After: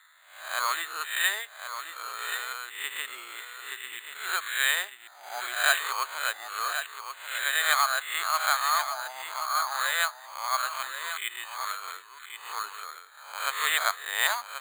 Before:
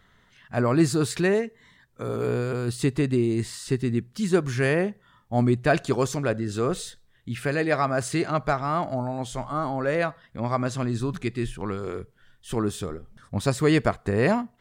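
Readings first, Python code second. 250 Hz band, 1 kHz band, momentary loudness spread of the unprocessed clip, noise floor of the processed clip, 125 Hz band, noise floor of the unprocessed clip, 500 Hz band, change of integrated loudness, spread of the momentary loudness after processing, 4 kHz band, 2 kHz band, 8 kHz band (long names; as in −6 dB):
below −35 dB, +1.0 dB, 11 LU, −51 dBFS, below −40 dB, −61 dBFS, −18.5 dB, −3.0 dB, 15 LU, +8.5 dB, +5.0 dB, +4.5 dB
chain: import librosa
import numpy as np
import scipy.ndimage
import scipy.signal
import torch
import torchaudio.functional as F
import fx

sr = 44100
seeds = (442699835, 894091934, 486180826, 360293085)

y = fx.spec_swells(x, sr, rise_s=0.6)
y = scipy.signal.sosfilt(scipy.signal.butter(4, 1100.0, 'highpass', fs=sr, output='sos'), y)
y = y + 10.0 ** (-9.0 / 20.0) * np.pad(y, (int(1082 * sr / 1000.0), 0))[:len(y)]
y = np.repeat(scipy.signal.resample_poly(y, 1, 8), 8)[:len(y)]
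y = F.gain(torch.from_numpy(y), 3.5).numpy()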